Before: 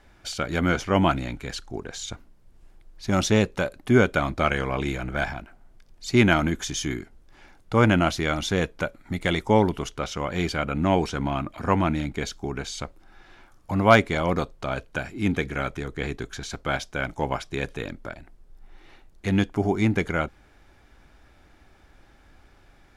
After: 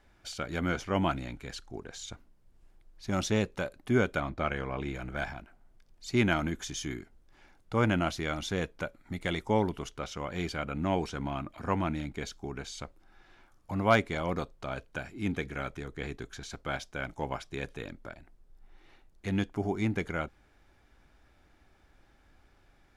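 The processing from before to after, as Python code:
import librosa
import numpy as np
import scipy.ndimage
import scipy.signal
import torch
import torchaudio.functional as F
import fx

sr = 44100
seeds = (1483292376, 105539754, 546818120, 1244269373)

y = fx.lowpass(x, sr, hz=2800.0, slope=6, at=(4.2, 4.95))
y = F.gain(torch.from_numpy(y), -8.0).numpy()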